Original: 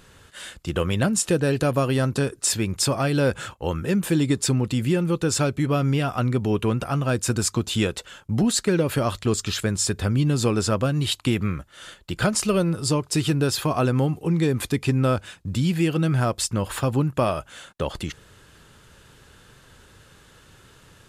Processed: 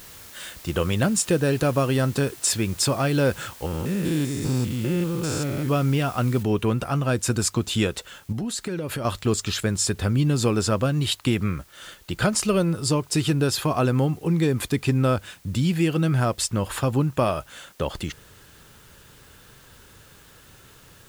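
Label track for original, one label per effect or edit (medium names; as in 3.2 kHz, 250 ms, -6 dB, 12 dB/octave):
3.660000	5.690000	spectrogram pixelated in time every 200 ms
6.430000	6.430000	noise floor step -45 dB -56 dB
8.320000	9.050000	compression 5:1, threshold -26 dBFS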